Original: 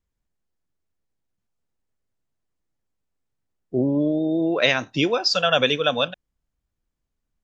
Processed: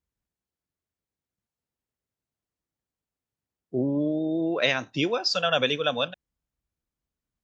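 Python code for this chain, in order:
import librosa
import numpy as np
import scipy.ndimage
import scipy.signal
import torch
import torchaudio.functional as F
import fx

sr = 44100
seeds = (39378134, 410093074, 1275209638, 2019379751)

y = scipy.signal.sosfilt(scipy.signal.butter(2, 48.0, 'highpass', fs=sr, output='sos'), x)
y = y * 10.0 ** (-4.5 / 20.0)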